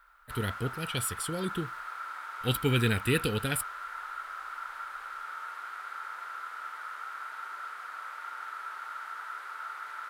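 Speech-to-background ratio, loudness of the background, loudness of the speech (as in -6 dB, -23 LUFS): 8.5 dB, -39.5 LUFS, -31.0 LUFS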